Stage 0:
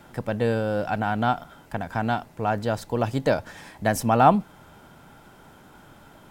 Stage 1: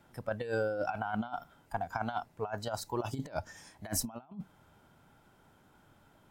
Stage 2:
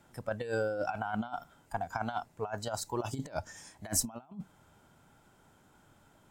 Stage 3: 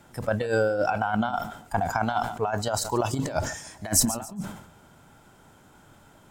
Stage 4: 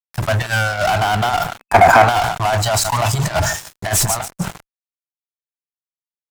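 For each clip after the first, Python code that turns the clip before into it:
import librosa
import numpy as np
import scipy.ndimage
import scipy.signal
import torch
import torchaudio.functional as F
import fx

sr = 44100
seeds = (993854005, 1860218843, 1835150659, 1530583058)

y1 = fx.noise_reduce_blind(x, sr, reduce_db=13)
y1 = fx.peak_eq(y1, sr, hz=97.0, db=4.0, octaves=0.67)
y1 = fx.over_compress(y1, sr, threshold_db=-29.0, ratio=-0.5)
y1 = F.gain(torch.from_numpy(y1), -6.0).numpy()
y2 = fx.peak_eq(y1, sr, hz=7500.0, db=7.0, octaves=0.65)
y3 = fx.echo_feedback(y2, sr, ms=142, feedback_pct=42, wet_db=-19.5)
y3 = fx.sustainer(y3, sr, db_per_s=82.0)
y3 = F.gain(torch.from_numpy(y3), 8.5).numpy()
y4 = scipy.signal.sosfilt(scipy.signal.cheby1(4, 1.0, [180.0, 640.0], 'bandstop', fs=sr, output='sos'), y3)
y4 = fx.fuzz(y4, sr, gain_db=32.0, gate_db=-40.0)
y4 = fx.spec_box(y4, sr, start_s=1.58, length_s=0.5, low_hz=230.0, high_hz=2600.0, gain_db=9)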